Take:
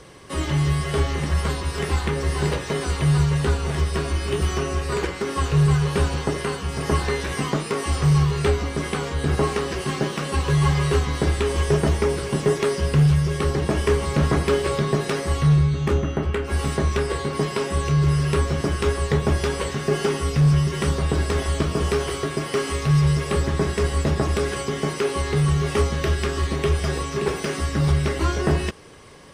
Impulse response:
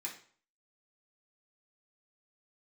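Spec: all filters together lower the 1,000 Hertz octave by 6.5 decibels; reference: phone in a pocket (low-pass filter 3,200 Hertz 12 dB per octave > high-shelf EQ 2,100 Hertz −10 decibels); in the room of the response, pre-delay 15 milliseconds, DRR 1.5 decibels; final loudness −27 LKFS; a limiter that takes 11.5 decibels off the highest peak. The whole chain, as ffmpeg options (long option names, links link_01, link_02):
-filter_complex "[0:a]equalizer=frequency=1000:width_type=o:gain=-5.5,alimiter=limit=-22.5dB:level=0:latency=1,asplit=2[link_01][link_02];[1:a]atrim=start_sample=2205,adelay=15[link_03];[link_02][link_03]afir=irnorm=-1:irlink=0,volume=-1dB[link_04];[link_01][link_04]amix=inputs=2:normalize=0,lowpass=3200,highshelf=frequency=2100:gain=-10,volume=3dB"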